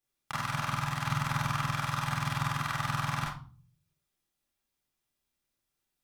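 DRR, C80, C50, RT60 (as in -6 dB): -5.0 dB, 10.0 dB, 4.0 dB, 0.40 s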